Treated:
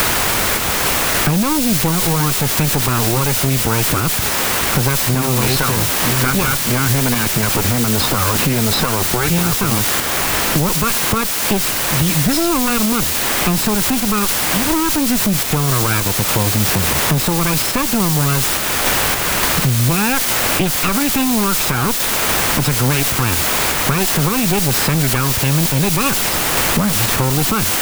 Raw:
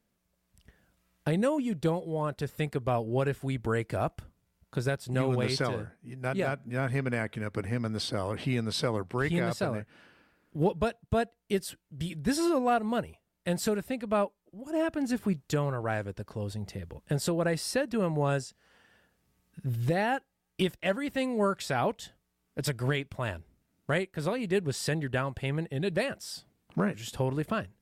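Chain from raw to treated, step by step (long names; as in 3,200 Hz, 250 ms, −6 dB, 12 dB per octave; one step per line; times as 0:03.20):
lower of the sound and its delayed copy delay 0.78 ms
high-shelf EQ 4,600 Hz −10 dB
in parallel at 0 dB: output level in coarse steps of 20 dB
on the sum: bit-depth reduction 6 bits, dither triangular
sample-and-hold tremolo
soft clipping −23 dBFS, distortion −17 dB
boost into a limiter +29.5 dB
multiband upward and downward compressor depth 100%
level −9 dB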